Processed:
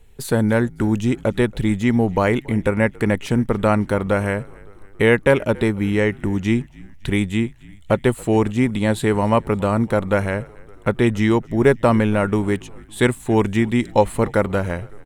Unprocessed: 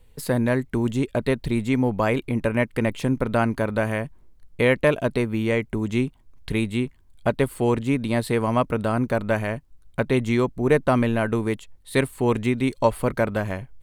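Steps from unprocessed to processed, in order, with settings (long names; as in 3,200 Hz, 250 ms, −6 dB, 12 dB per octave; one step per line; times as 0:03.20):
wrong playback speed 48 kHz file played as 44.1 kHz
echo with shifted repeats 279 ms, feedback 59%, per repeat −53 Hz, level −24 dB
level +4 dB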